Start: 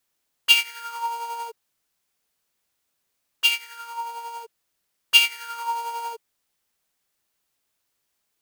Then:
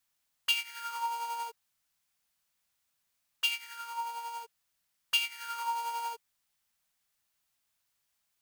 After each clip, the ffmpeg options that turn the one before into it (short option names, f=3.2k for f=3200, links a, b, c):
-af "equalizer=f=390:w=1.3:g=-10.5,acompressor=threshold=-26dB:ratio=3,volume=-3dB"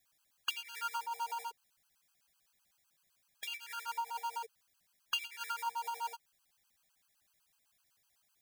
-af "acompressor=threshold=-40dB:ratio=6,acrusher=bits=8:mode=log:mix=0:aa=0.000001,afftfilt=real='re*gt(sin(2*PI*7.9*pts/sr)*(1-2*mod(floor(b*sr/1024/820),2)),0)':imag='im*gt(sin(2*PI*7.9*pts/sr)*(1-2*mod(floor(b*sr/1024/820),2)),0)':win_size=1024:overlap=0.75,volume=6.5dB"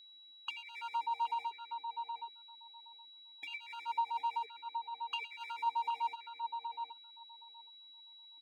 -filter_complex "[0:a]asplit=3[a][b][c];[a]bandpass=f=300:t=q:w=8,volume=0dB[d];[b]bandpass=f=870:t=q:w=8,volume=-6dB[e];[c]bandpass=f=2.24k:t=q:w=8,volume=-9dB[f];[d][e][f]amix=inputs=3:normalize=0,aeval=exprs='val(0)+0.000398*sin(2*PI*3900*n/s)':c=same,asplit=2[g][h];[h]adelay=770,lowpass=f=1.4k:p=1,volume=-4.5dB,asplit=2[i][j];[j]adelay=770,lowpass=f=1.4k:p=1,volume=0.16,asplit=2[k][l];[l]adelay=770,lowpass=f=1.4k:p=1,volume=0.16[m];[g][i][k][m]amix=inputs=4:normalize=0,volume=13dB"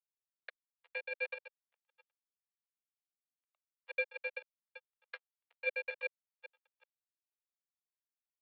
-af "acrusher=bits=4:mix=0:aa=0.5,aeval=exprs='val(0)*sin(2*PI*1300*n/s)':c=same,highpass=f=380:t=q:w=0.5412,highpass=f=380:t=q:w=1.307,lowpass=f=3.1k:t=q:w=0.5176,lowpass=f=3.1k:t=q:w=0.7071,lowpass=f=3.1k:t=q:w=1.932,afreqshift=140,volume=2dB"